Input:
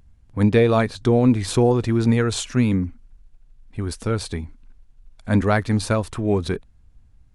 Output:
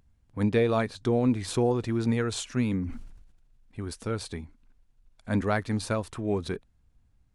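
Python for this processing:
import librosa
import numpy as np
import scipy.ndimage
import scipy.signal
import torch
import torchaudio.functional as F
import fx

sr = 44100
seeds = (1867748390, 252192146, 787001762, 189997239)

y = fx.low_shelf(x, sr, hz=82.0, db=-7.0)
y = fx.sustainer(y, sr, db_per_s=53.0, at=(2.78, 3.85))
y = F.gain(torch.from_numpy(y), -7.0).numpy()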